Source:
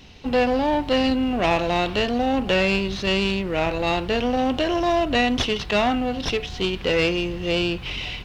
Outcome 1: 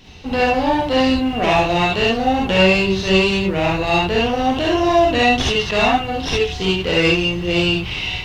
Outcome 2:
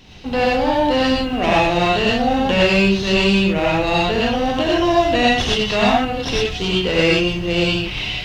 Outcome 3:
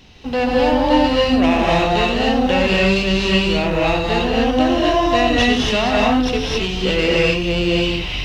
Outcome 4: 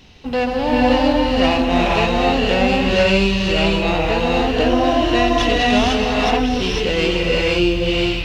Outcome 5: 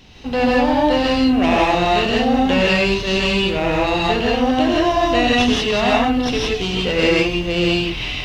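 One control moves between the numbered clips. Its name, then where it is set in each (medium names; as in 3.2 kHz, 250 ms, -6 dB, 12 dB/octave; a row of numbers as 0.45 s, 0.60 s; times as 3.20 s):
gated-style reverb, gate: 90 ms, 140 ms, 300 ms, 530 ms, 200 ms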